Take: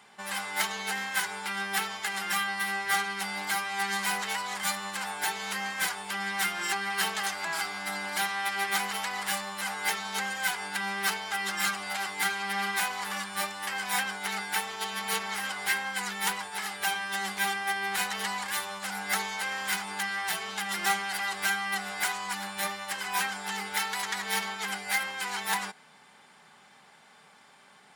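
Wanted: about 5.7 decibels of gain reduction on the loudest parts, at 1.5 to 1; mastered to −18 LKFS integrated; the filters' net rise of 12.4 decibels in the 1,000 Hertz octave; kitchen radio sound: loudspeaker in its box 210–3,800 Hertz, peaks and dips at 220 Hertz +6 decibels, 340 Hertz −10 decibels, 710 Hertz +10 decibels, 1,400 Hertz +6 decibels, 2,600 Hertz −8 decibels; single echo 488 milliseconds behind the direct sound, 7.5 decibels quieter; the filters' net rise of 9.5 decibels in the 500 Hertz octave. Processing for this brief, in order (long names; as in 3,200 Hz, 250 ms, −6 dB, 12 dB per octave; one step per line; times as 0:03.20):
parametric band 500 Hz +6.5 dB
parametric band 1,000 Hz +8 dB
downward compressor 1.5 to 1, threshold −34 dBFS
loudspeaker in its box 210–3,800 Hz, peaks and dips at 220 Hz +6 dB, 340 Hz −10 dB, 710 Hz +10 dB, 1,400 Hz +6 dB, 2,600 Hz −8 dB
single-tap delay 488 ms −7.5 dB
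level +9 dB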